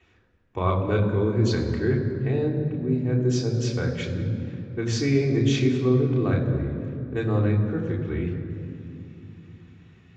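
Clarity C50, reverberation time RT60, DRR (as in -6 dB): 6.0 dB, 2.8 s, -2.5 dB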